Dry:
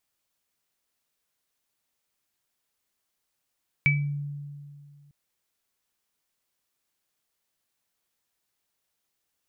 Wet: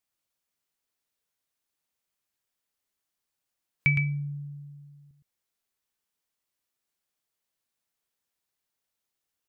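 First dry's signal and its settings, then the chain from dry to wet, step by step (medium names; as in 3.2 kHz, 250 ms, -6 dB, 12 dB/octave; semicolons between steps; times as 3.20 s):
sine partials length 1.25 s, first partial 144 Hz, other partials 2.3 kHz, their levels 5.5 dB, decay 2.26 s, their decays 0.30 s, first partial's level -20.5 dB
spectral noise reduction 6 dB; on a send: delay 113 ms -7 dB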